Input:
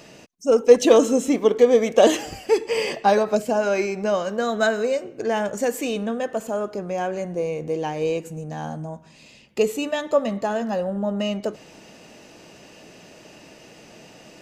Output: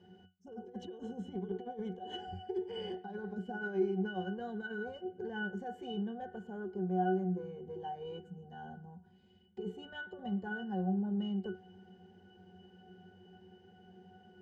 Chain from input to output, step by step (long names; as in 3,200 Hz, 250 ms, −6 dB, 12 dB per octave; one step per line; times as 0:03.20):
compressor whose output falls as the input rises −22 dBFS, ratio −1
harmonic generator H 4 −25 dB, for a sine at −10 dBFS
resonances in every octave F#, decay 0.23 s